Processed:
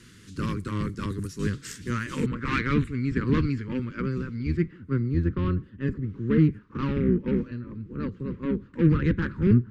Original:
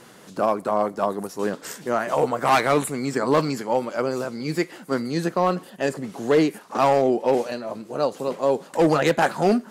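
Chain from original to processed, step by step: octave divider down 1 oct, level +2 dB; low-pass 9.1 kHz 12 dB/octave, from 2.26 s 2.2 kHz, from 4.57 s 1.2 kHz; Chebyshev shaper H 7 -30 dB, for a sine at -6.5 dBFS; Butterworth band-stop 710 Hz, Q 0.58

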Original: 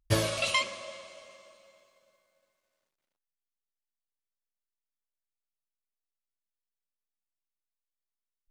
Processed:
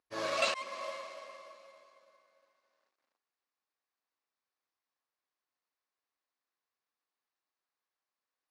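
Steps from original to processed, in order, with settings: slow attack 308 ms; careless resampling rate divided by 4×, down none, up zero stuff; cabinet simulation 280–5200 Hz, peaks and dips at 280 Hz +4 dB, 490 Hz +3 dB, 760 Hz +4 dB, 1.1 kHz +8 dB, 1.7 kHz +4 dB, 3.2 kHz -5 dB

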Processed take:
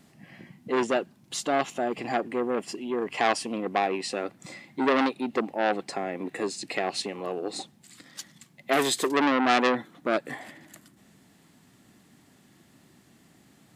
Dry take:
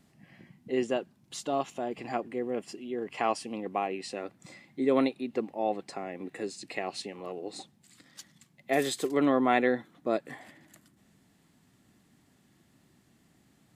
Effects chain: bass shelf 82 Hz -9.5 dB; transformer saturation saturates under 2.5 kHz; trim +7.5 dB

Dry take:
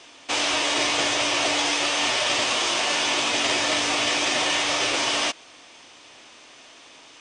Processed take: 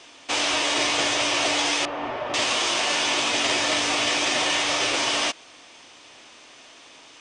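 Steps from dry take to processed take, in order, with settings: 1.85–2.34 s: low-pass 1.1 kHz 12 dB/octave

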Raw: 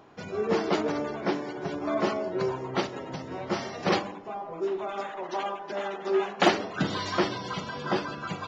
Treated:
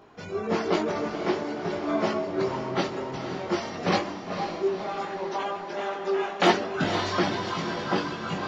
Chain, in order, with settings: chorus voices 6, 0.48 Hz, delay 20 ms, depth 2.9 ms; echo that smears into a reverb 500 ms, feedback 56%, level -8 dB; trim +4 dB

